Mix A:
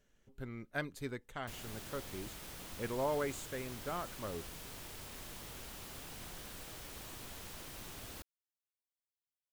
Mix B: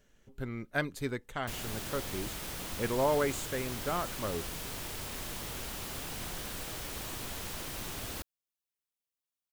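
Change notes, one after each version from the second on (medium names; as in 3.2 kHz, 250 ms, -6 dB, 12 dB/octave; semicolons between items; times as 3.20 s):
speech +6.5 dB; background +8.5 dB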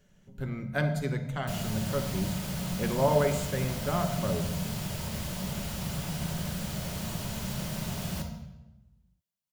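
reverb: on, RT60 1.0 s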